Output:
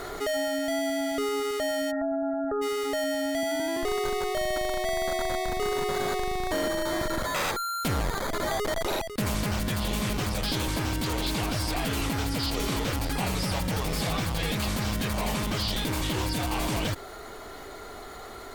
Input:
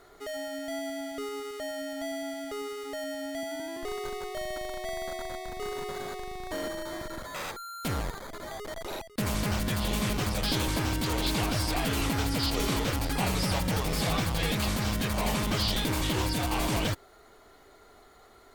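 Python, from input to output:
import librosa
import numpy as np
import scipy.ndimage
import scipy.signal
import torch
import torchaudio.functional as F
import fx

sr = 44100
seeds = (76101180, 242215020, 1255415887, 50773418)

y = fx.rider(x, sr, range_db=10, speed_s=0.5)
y = fx.brickwall_lowpass(y, sr, high_hz=1900.0, at=(1.9, 2.61), fade=0.02)
y = fx.env_flatten(y, sr, amount_pct=50)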